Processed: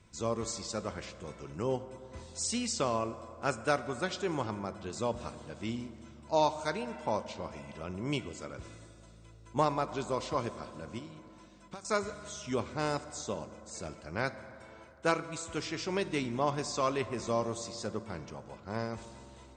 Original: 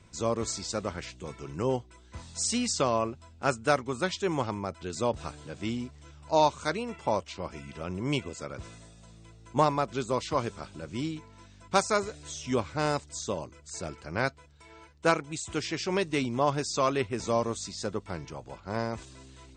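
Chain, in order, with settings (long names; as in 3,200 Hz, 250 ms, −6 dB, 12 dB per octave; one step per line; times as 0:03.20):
0:10.98–0:11.85: downward compressor 12 to 1, threshold −39 dBFS, peak gain reduction 21 dB
convolution reverb RT60 3.1 s, pre-delay 5 ms, DRR 11.5 dB
level −4.5 dB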